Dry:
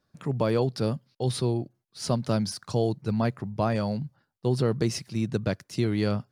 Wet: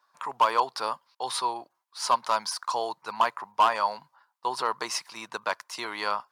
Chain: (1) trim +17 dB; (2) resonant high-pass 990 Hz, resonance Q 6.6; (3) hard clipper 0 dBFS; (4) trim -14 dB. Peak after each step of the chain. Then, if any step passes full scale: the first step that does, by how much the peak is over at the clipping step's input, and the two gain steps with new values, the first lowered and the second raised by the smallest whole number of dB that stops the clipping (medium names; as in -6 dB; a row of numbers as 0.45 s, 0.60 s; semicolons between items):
+6.0 dBFS, +7.5 dBFS, 0.0 dBFS, -14.0 dBFS; step 1, 7.5 dB; step 1 +9 dB, step 4 -6 dB